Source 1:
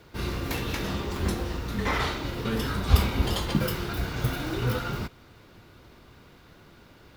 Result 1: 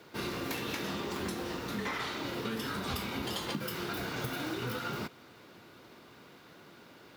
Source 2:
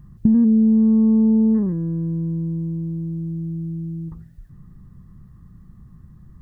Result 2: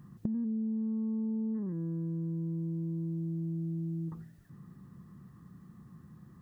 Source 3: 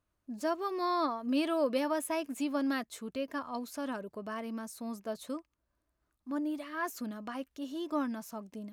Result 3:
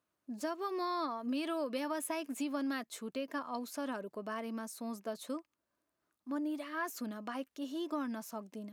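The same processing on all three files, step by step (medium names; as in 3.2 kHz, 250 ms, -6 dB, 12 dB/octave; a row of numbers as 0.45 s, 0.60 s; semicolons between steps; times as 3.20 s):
high-pass 190 Hz 12 dB/octave; dynamic bell 580 Hz, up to -4 dB, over -35 dBFS, Q 0.93; compression 10:1, threshold -32 dBFS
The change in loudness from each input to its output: -7.5 LU, -16.0 LU, -3.5 LU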